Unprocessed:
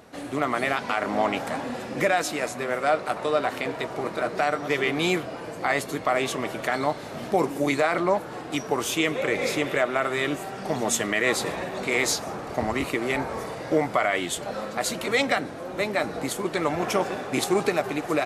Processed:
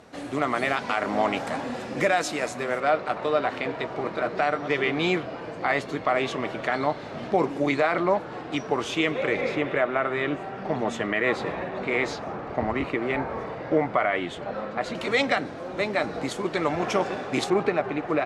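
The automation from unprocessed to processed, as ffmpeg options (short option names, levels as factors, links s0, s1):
-af "asetnsamples=n=441:p=0,asendcmd='2.8 lowpass f 4100;9.41 lowpass f 2500;14.95 lowpass f 5700;17.5 lowpass f 2500',lowpass=8300"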